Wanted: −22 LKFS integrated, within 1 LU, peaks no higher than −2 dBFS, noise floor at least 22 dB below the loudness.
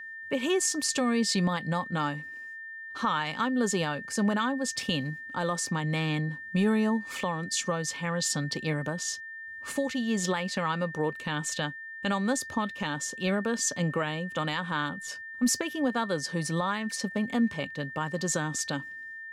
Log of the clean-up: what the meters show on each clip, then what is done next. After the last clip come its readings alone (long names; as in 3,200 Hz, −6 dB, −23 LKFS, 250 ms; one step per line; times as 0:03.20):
interfering tone 1,800 Hz; level of the tone −39 dBFS; integrated loudness −29.5 LKFS; sample peak −17.0 dBFS; target loudness −22.0 LKFS
→ notch filter 1,800 Hz, Q 30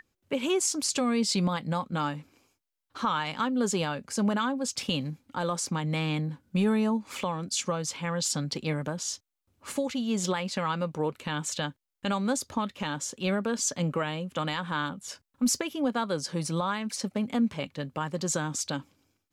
interfering tone none found; integrated loudness −30.0 LKFS; sample peak −17.0 dBFS; target loudness −22.0 LKFS
→ level +8 dB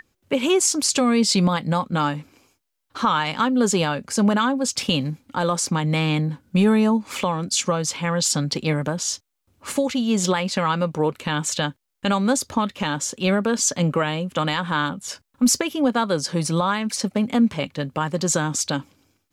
integrated loudness −22.0 LKFS; sample peak −9.0 dBFS; background noise floor −77 dBFS